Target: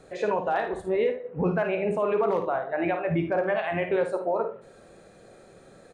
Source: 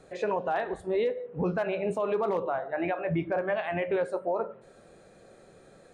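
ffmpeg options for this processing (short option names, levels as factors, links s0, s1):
-filter_complex "[0:a]asettb=1/sr,asplit=3[s0][s1][s2];[s0]atrim=end=0.874[s3];[s1]atrim=start=0.87:end=2.29,asetpts=PTS-STARTPTS,afade=t=in:d=0.004:c=qsin,afade=t=out:st=1.416:d=0.004:c=qsin,highshelf=f=3100:t=q:w=1.5:g=-6[s4];[s2]atrim=start=2.286[s5];[s3][s4]acrossfade=d=0.004:c1=hsin:c2=qsin[s6];[s6][s5]acrossfade=d=0.004:c1=qsin:c2=hsin,aecho=1:1:53|77:0.376|0.211,volume=1.33"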